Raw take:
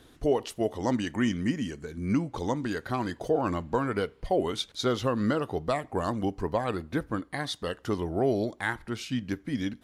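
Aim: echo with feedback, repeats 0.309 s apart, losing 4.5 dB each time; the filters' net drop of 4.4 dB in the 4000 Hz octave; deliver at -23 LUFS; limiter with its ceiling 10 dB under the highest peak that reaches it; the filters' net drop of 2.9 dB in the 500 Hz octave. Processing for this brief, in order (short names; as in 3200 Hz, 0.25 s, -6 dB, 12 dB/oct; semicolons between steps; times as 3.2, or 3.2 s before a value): bell 500 Hz -3.5 dB; bell 4000 Hz -5.5 dB; limiter -25.5 dBFS; feedback echo 0.309 s, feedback 60%, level -4.5 dB; gain +11.5 dB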